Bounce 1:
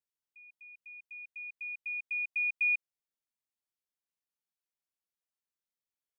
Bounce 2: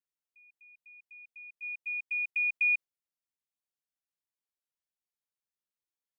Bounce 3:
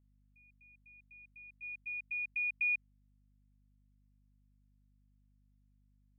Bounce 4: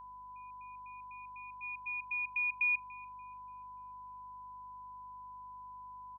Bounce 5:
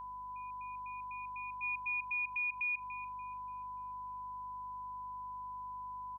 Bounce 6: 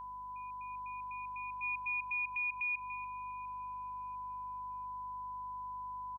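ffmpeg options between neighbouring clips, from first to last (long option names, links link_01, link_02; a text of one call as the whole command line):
ffmpeg -i in.wav -af "agate=range=-7dB:threshold=-41dB:ratio=16:detection=peak,volume=2dB" out.wav
ffmpeg -i in.wav -af "lowpass=frequency=2300:width_type=q:width=1.5,aeval=exprs='val(0)+0.001*(sin(2*PI*50*n/s)+sin(2*PI*2*50*n/s)/2+sin(2*PI*3*50*n/s)/3+sin(2*PI*4*50*n/s)/4+sin(2*PI*5*50*n/s)/5)':channel_layout=same,volume=-8.5dB" out.wav
ffmpeg -i in.wav -filter_complex "[0:a]aeval=exprs='val(0)+0.00355*sin(2*PI*1000*n/s)':channel_layout=same,asplit=2[link_01][link_02];[link_02]adelay=290,lowpass=frequency=1500:poles=1,volume=-16.5dB,asplit=2[link_03][link_04];[link_04]adelay=290,lowpass=frequency=1500:poles=1,volume=0.53,asplit=2[link_05][link_06];[link_06]adelay=290,lowpass=frequency=1500:poles=1,volume=0.53,asplit=2[link_07][link_08];[link_08]adelay=290,lowpass=frequency=1500:poles=1,volume=0.53,asplit=2[link_09][link_10];[link_10]adelay=290,lowpass=frequency=1500:poles=1,volume=0.53[link_11];[link_01][link_03][link_05][link_07][link_09][link_11]amix=inputs=6:normalize=0,volume=1.5dB" out.wav
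ffmpeg -i in.wav -af "alimiter=level_in=11.5dB:limit=-24dB:level=0:latency=1:release=78,volume=-11.5dB,volume=5dB" out.wav
ffmpeg -i in.wav -filter_complex "[0:a]asplit=2[link_01][link_02];[link_02]adelay=699,lowpass=frequency=1800:poles=1,volume=-17dB,asplit=2[link_03][link_04];[link_04]adelay=699,lowpass=frequency=1800:poles=1,volume=0.36,asplit=2[link_05][link_06];[link_06]adelay=699,lowpass=frequency=1800:poles=1,volume=0.36[link_07];[link_01][link_03][link_05][link_07]amix=inputs=4:normalize=0" out.wav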